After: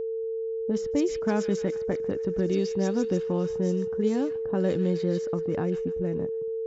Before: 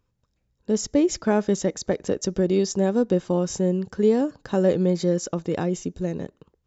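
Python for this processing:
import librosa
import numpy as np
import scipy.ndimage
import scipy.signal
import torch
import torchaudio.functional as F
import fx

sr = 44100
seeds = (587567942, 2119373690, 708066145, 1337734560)

p1 = fx.echo_wet_highpass(x, sr, ms=148, feedback_pct=69, hz=2400.0, wet_db=-6)
p2 = fx.dynamic_eq(p1, sr, hz=550.0, q=1.2, threshold_db=-35.0, ratio=4.0, max_db=-6)
p3 = fx.env_lowpass(p2, sr, base_hz=390.0, full_db=-15.5)
p4 = fx.level_steps(p3, sr, step_db=17)
p5 = p3 + (p4 * librosa.db_to_amplitude(-1.0))
p6 = p5 + 10.0 ** (-23.0 / 20.0) * np.sin(2.0 * np.pi * 450.0 * np.arange(len(p5)) / sr)
y = p6 * librosa.db_to_amplitude(-5.0)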